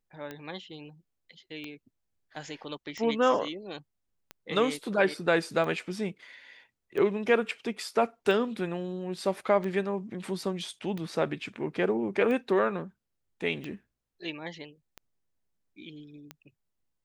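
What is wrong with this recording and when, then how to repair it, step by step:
tick 45 rpm -24 dBFS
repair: de-click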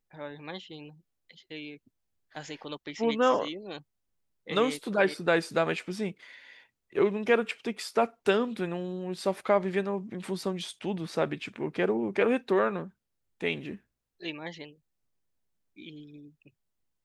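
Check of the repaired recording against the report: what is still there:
none

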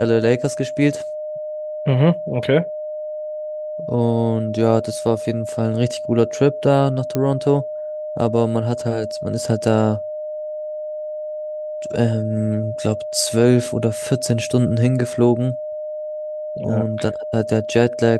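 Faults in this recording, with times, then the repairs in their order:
tone 610 Hz -25 dBFS
7.15 pop -8 dBFS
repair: de-click; notch 610 Hz, Q 30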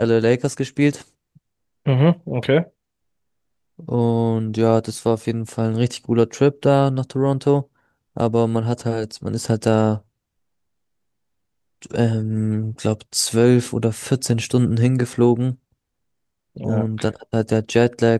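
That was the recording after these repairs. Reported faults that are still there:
none

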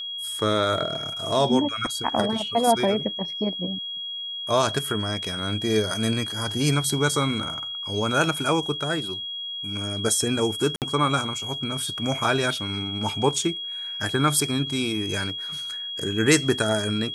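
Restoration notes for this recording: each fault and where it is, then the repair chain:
tone 3300 Hz -30 dBFS
10.76–10.82 gap 58 ms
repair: notch 3300 Hz, Q 30; interpolate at 10.76, 58 ms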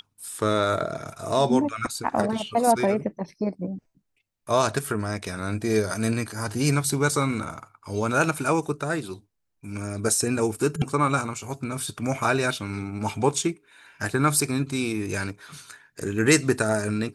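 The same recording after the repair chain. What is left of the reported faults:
none

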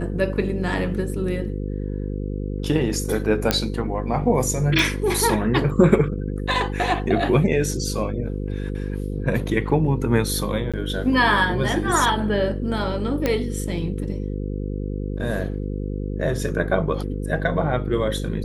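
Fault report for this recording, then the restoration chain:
buzz 50 Hz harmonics 10 -27 dBFS
3.51 pop -2 dBFS
4.79 pop
10.72–10.74 gap 16 ms
13.26 pop -8 dBFS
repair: de-click; de-hum 50 Hz, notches 10; interpolate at 10.72, 16 ms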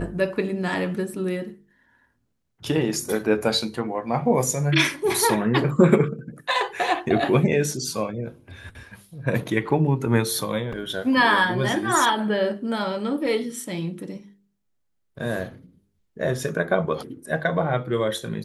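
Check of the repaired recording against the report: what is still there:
none

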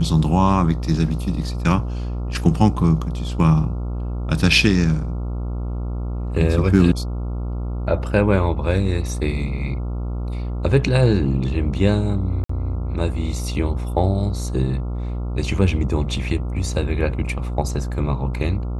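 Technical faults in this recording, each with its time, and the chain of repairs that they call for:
buzz 60 Hz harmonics 23 -25 dBFS
12.44–12.49 gap 54 ms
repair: de-hum 60 Hz, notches 23; interpolate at 12.44, 54 ms

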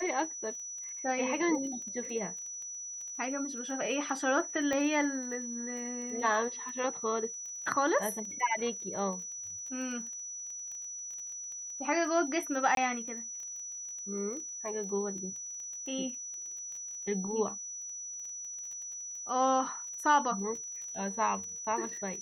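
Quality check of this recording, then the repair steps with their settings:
crackle 20/s -40 dBFS
tone 5900 Hz -39 dBFS
4.73 pop -21 dBFS
12.75–12.77 gap 22 ms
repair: de-click; notch 5900 Hz, Q 30; interpolate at 12.75, 22 ms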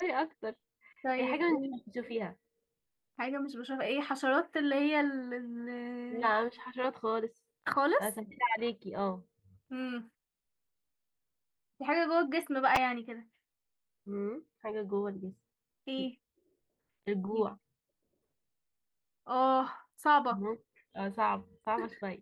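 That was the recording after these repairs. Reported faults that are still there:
none

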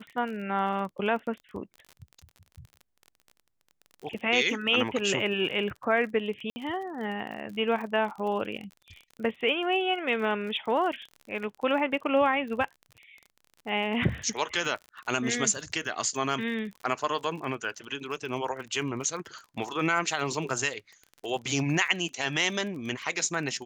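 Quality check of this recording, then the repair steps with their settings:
crackle 34/s -37 dBFS
6.5–6.56 gap 60 ms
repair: de-click; interpolate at 6.5, 60 ms

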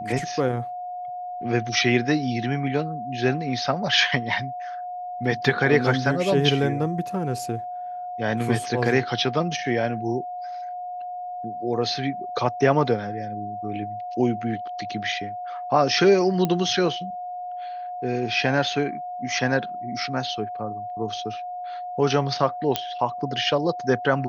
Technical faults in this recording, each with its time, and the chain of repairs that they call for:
tone 720 Hz -30 dBFS
16.45 pop -11 dBFS
22.76 pop -6 dBFS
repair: de-click; notch 720 Hz, Q 30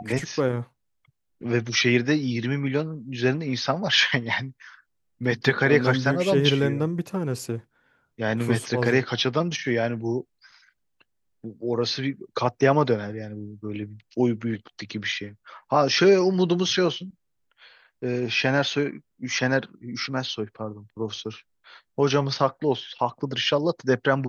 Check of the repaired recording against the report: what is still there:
none

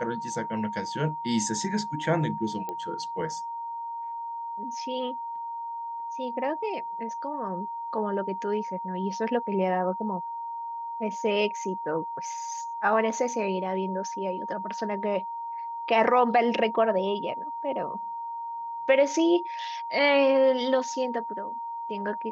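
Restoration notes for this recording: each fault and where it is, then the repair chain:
tone 930 Hz -32 dBFS
2.69 pop -20 dBFS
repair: de-click; notch 930 Hz, Q 30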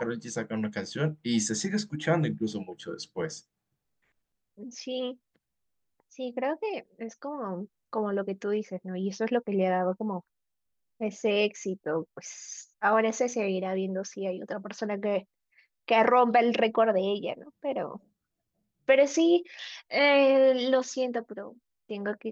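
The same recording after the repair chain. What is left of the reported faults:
none

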